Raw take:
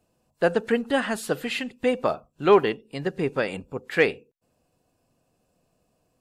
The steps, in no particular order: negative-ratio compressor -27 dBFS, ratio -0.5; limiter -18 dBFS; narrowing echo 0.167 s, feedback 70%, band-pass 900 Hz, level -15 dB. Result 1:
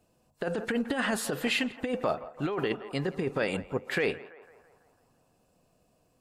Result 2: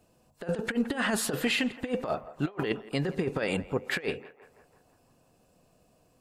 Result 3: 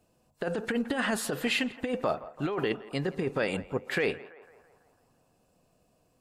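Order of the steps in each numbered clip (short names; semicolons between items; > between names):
limiter > narrowing echo > negative-ratio compressor; negative-ratio compressor > limiter > narrowing echo; limiter > negative-ratio compressor > narrowing echo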